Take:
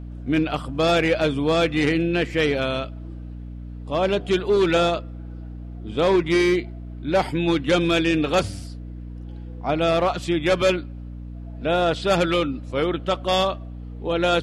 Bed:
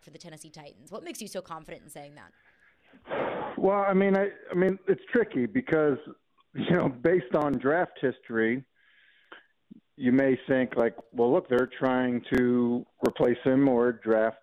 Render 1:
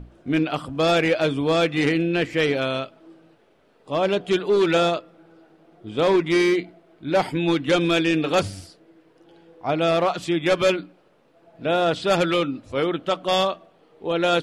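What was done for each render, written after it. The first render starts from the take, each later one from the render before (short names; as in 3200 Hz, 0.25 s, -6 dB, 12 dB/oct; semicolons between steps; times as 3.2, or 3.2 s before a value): notches 60/120/180/240/300 Hz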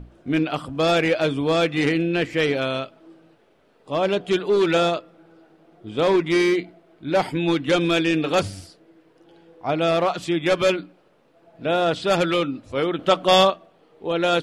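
12.99–13.5 gain +5.5 dB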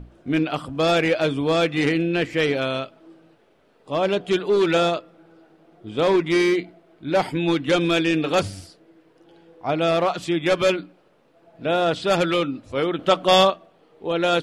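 nothing audible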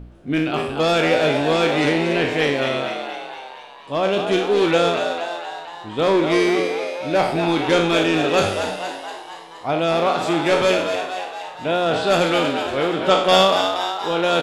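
spectral trails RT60 0.62 s; on a send: frequency-shifting echo 0.235 s, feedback 61%, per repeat +87 Hz, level -7 dB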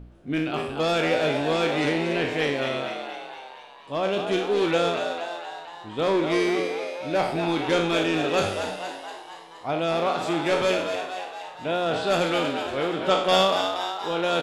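gain -5.5 dB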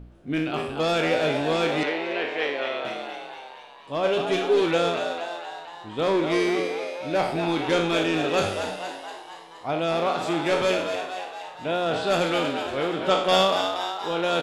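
1.83–2.85 three-band isolator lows -22 dB, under 340 Hz, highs -16 dB, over 4400 Hz; 4.03–4.61 comb 7.2 ms, depth 67%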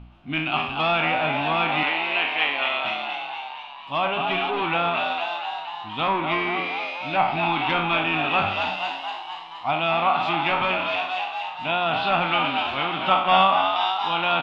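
treble ducked by the level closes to 2100 Hz, closed at -19 dBFS; EQ curve 250 Hz 0 dB, 480 Hz -14 dB, 780 Hz +8 dB, 1200 Hz +8 dB, 1700 Hz 0 dB, 2700 Hz +13 dB, 8600 Hz -15 dB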